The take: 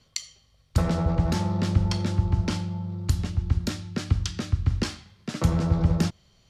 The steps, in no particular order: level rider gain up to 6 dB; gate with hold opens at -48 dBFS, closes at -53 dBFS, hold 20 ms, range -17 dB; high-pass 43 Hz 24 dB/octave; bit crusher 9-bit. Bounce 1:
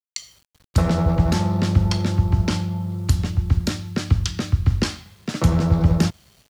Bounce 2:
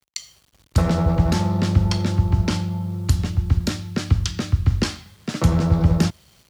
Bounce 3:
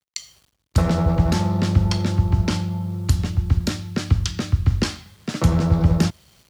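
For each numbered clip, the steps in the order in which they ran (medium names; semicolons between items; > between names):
level rider > gate with hold > high-pass > bit crusher; level rider > bit crusher > high-pass > gate with hold; level rider > bit crusher > gate with hold > high-pass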